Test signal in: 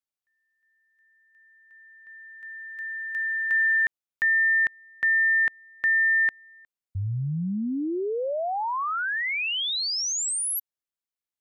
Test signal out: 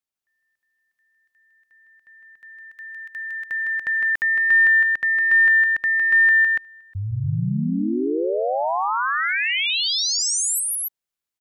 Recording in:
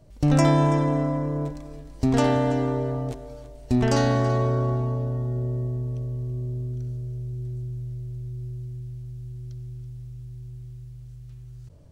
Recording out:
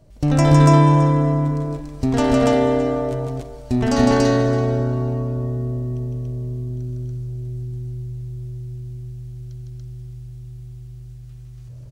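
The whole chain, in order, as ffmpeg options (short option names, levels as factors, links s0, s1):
-af "aecho=1:1:157.4|285.7:0.708|1,volume=1.19"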